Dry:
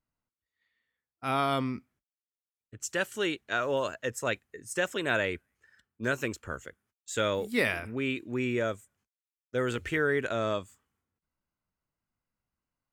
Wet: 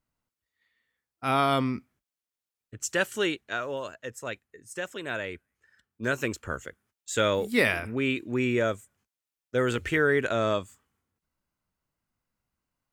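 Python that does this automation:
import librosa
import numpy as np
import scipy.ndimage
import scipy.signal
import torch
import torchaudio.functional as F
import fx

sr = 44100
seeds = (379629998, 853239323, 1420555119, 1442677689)

y = fx.gain(x, sr, db=fx.line((3.18, 4.0), (3.78, -5.0), (5.23, -5.0), (6.4, 4.0)))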